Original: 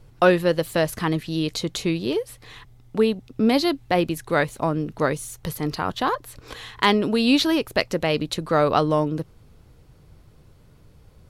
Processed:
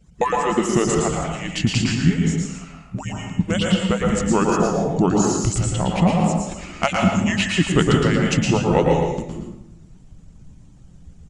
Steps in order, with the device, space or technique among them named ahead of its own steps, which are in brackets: median-filter separation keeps percussive; fifteen-band EQ 100 Hz +3 dB, 250 Hz +11 dB, 10000 Hz +11 dB; monster voice (pitch shift -6.5 st; low shelf 170 Hz +8.5 dB; echo 0.111 s -6 dB; reverb RT60 0.85 s, pre-delay 0.112 s, DRR 0.5 dB)

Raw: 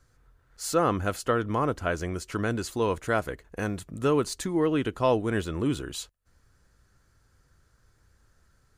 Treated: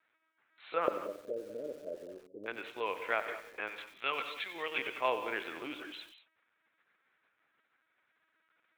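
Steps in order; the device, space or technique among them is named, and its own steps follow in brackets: 0.87–2.48 steep low-pass 620 Hz 96 dB/oct; 3.68–4.78 tilt +4.5 dB/oct; talking toy (LPC vocoder at 8 kHz pitch kept; HPF 570 Hz 12 dB/oct; bell 2300 Hz +11.5 dB 0.53 oct); non-linear reverb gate 0.22 s rising, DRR 11 dB; lo-fi delay 92 ms, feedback 55%, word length 7-bit, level -12.5 dB; gain -6 dB

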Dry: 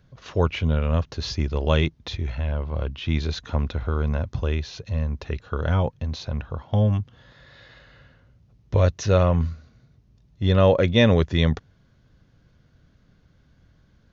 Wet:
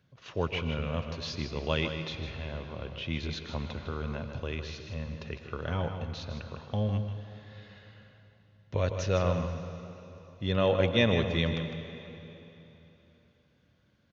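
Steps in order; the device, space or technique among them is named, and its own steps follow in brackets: PA in a hall (HPF 100 Hz; bell 2700 Hz +5.5 dB 0.85 oct; echo 0.155 s -9 dB; reverb RT60 3.4 s, pre-delay 86 ms, DRR 9 dB); gain -8.5 dB

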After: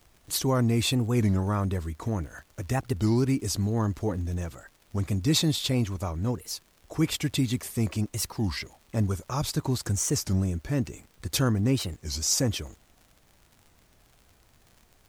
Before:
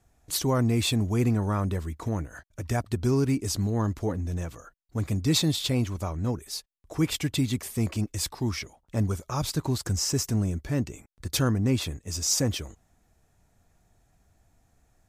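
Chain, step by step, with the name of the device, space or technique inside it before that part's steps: warped LP (record warp 33 1/3 rpm, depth 250 cents; crackle 93/s -43 dBFS; pink noise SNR 36 dB)

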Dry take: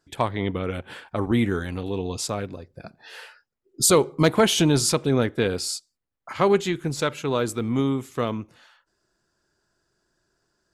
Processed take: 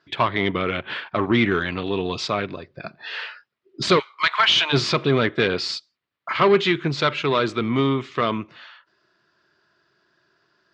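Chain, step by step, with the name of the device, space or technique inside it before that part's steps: 3.98–4.72 HPF 1400 Hz -> 690 Hz 24 dB/oct; overdrive pedal into a guitar cabinet (overdrive pedal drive 17 dB, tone 3600 Hz, clips at -6.5 dBFS; speaker cabinet 85–4400 Hz, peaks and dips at 140 Hz +3 dB, 260 Hz -4 dB, 500 Hz -8 dB, 810 Hz -9 dB, 1500 Hz -3 dB); gain +2.5 dB

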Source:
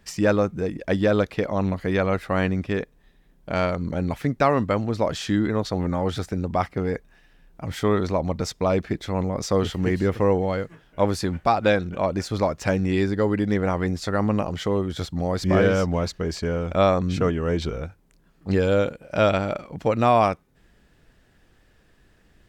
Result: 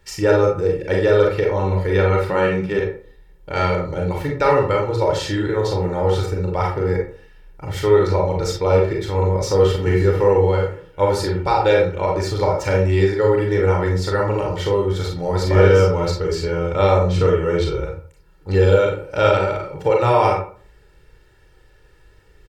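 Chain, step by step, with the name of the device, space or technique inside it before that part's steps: microphone above a desk (comb 2.2 ms, depth 90%; reverb RT60 0.45 s, pre-delay 32 ms, DRR -1 dB); 2.29–2.79 resonant low shelf 130 Hz -7 dB, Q 3; gain -1 dB

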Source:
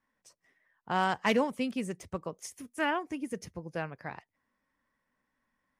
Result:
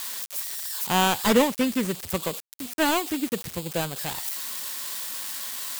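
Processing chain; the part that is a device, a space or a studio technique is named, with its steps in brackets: budget class-D amplifier (switching dead time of 0.26 ms; switching spikes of -25 dBFS); gain +8.5 dB

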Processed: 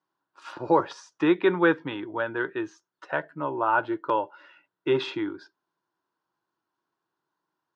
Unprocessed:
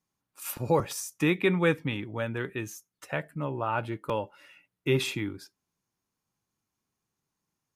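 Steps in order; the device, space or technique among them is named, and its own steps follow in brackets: kitchen radio (speaker cabinet 210–4500 Hz, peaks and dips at 220 Hz -8 dB, 340 Hz +9 dB, 640 Hz +4 dB, 970 Hz +10 dB, 1500 Hz +10 dB, 2300 Hz -8 dB)

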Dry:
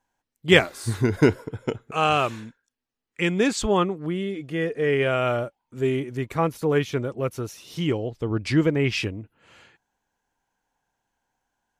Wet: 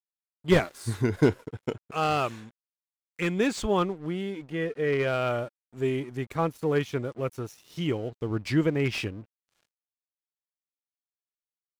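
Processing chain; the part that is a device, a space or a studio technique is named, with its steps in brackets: early transistor amplifier (crossover distortion -47 dBFS; slew limiter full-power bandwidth 190 Hz); 4.44–5.08 high shelf 5800 Hz -5.5 dB; gain -3.5 dB

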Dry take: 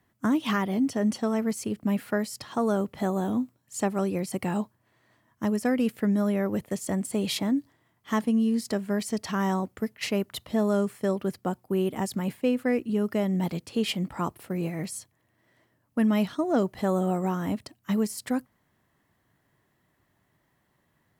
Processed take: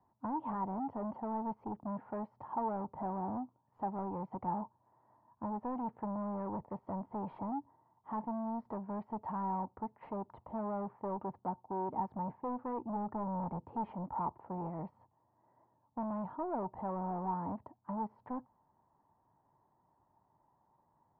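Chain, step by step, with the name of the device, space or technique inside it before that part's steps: 12.83–13.91 low shelf 370 Hz +6 dB; overdriven synthesiser ladder filter (soft clip -30.5 dBFS, distortion -7 dB; ladder low-pass 960 Hz, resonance 80%); gain +5 dB

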